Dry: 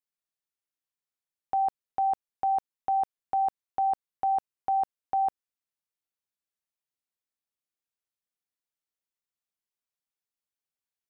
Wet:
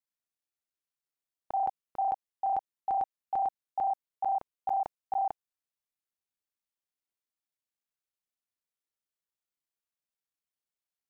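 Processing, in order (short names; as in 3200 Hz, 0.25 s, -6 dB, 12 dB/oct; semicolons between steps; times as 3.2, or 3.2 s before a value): local time reversal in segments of 32 ms; gain -3 dB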